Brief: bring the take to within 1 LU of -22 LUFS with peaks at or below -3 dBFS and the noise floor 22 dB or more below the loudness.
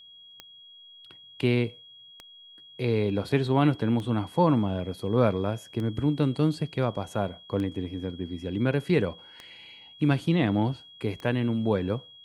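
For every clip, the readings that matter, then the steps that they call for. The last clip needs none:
clicks 7; steady tone 3300 Hz; tone level -48 dBFS; loudness -27.0 LUFS; peak -9.5 dBFS; loudness target -22.0 LUFS
-> de-click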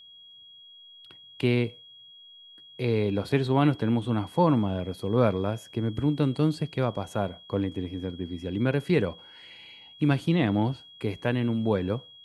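clicks 0; steady tone 3300 Hz; tone level -48 dBFS
-> notch 3300 Hz, Q 30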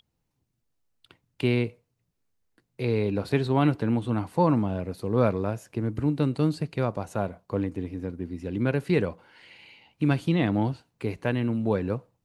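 steady tone none; loudness -27.0 LUFS; peak -9.5 dBFS; loudness target -22.0 LUFS
-> gain +5 dB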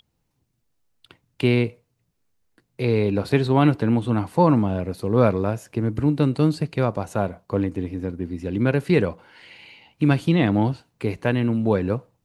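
loudness -22.0 LUFS; peak -4.5 dBFS; noise floor -73 dBFS

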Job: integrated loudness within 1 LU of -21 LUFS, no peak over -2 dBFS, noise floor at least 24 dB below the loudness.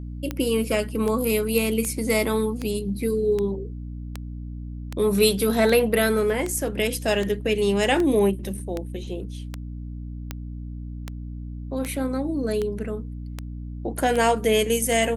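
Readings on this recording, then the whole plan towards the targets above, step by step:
clicks 20; hum 60 Hz; harmonics up to 300 Hz; hum level -31 dBFS; loudness -23.5 LUFS; peak -6.0 dBFS; loudness target -21.0 LUFS
-> de-click; notches 60/120/180/240/300 Hz; gain +2.5 dB

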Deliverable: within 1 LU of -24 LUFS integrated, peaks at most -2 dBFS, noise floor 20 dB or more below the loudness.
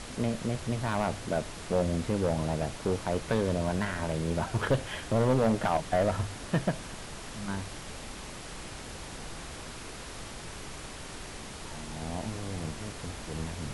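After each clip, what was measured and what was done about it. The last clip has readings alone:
clipped 0.9%; flat tops at -19.5 dBFS; noise floor -43 dBFS; noise floor target -53 dBFS; loudness -32.5 LUFS; peak -19.5 dBFS; loudness target -24.0 LUFS
-> clip repair -19.5 dBFS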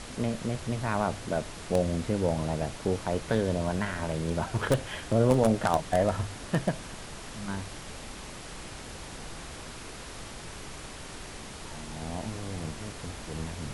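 clipped 0.0%; noise floor -43 dBFS; noise floor target -51 dBFS
-> noise print and reduce 8 dB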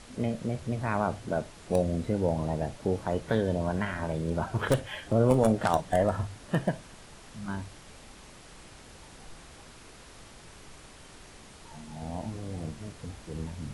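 noise floor -51 dBFS; loudness -30.0 LUFS; peak -10.0 dBFS; loudness target -24.0 LUFS
-> gain +6 dB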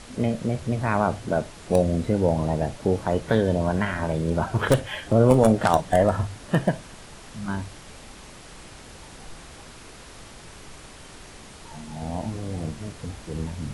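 loudness -24.0 LUFS; peak -4.0 dBFS; noise floor -45 dBFS

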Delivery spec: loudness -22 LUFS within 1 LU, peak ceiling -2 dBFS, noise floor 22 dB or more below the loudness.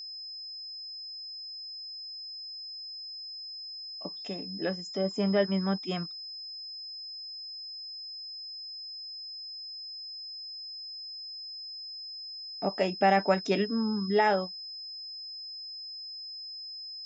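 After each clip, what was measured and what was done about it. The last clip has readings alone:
steady tone 5100 Hz; tone level -39 dBFS; loudness -33.5 LUFS; peak -12.0 dBFS; loudness target -22.0 LUFS
-> notch 5100 Hz, Q 30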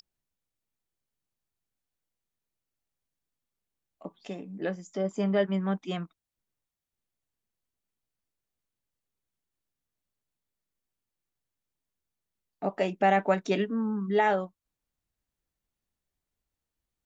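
steady tone none; loudness -28.5 LUFS; peak -12.5 dBFS; loudness target -22.0 LUFS
-> gain +6.5 dB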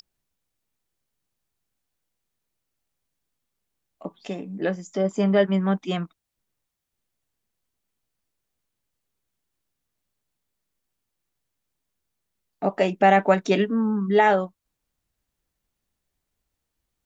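loudness -22.0 LUFS; peak -6.0 dBFS; noise floor -82 dBFS

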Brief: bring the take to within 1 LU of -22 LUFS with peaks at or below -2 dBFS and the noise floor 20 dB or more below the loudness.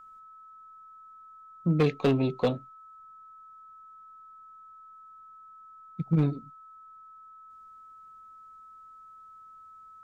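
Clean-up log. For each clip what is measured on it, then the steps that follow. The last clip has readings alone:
clipped 0.3%; flat tops at -17.0 dBFS; steady tone 1300 Hz; tone level -48 dBFS; loudness -28.0 LUFS; peak -17.0 dBFS; loudness target -22.0 LUFS
-> clip repair -17 dBFS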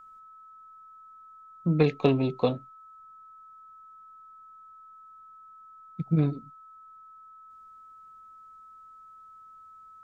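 clipped 0.0%; steady tone 1300 Hz; tone level -48 dBFS
-> notch 1300 Hz, Q 30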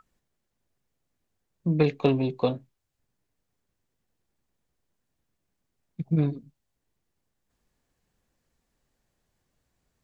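steady tone none; loudness -26.5 LUFS; peak -8.0 dBFS; loudness target -22.0 LUFS
-> gain +4.5 dB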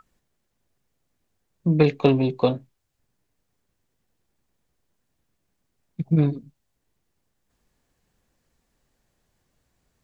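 loudness -22.0 LUFS; peak -3.5 dBFS; noise floor -76 dBFS

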